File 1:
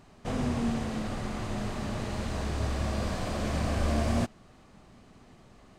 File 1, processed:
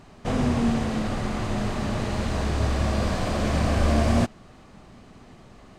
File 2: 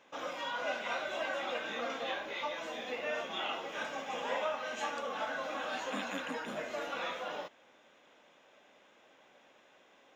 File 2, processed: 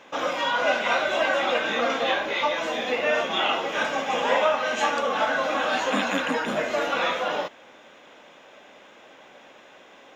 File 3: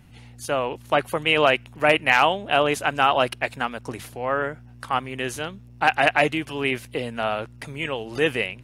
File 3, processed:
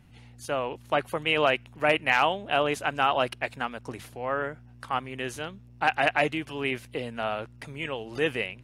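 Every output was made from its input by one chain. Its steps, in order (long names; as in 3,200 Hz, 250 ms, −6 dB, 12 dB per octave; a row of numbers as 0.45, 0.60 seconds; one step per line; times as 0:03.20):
high-shelf EQ 7,900 Hz −4.5 dB
normalise the peak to −9 dBFS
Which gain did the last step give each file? +6.5, +13.5, −5.0 decibels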